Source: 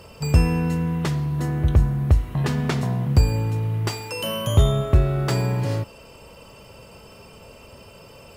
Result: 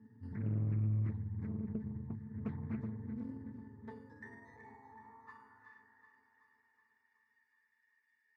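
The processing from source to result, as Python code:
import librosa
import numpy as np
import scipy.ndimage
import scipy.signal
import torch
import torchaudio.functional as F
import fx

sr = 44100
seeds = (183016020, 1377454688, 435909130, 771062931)

y = fx.pitch_heads(x, sr, semitones=-8.5)
y = 10.0 ** (-18.5 / 20.0) * np.tanh(y / 10.0 ** (-18.5 / 20.0))
y = fx.filter_sweep_highpass(y, sr, from_hz=170.0, to_hz=2300.0, start_s=2.66, end_s=6.28, q=4.2)
y = fx.fixed_phaser(y, sr, hz=1400.0, stages=4)
y = fx.octave_resonator(y, sr, note='A', decay_s=0.16)
y = fx.echo_feedback(y, sr, ms=375, feedback_pct=59, wet_db=-10.5)
y = fx.doppler_dist(y, sr, depth_ms=0.67)
y = y * 10.0 ** (-1.5 / 20.0)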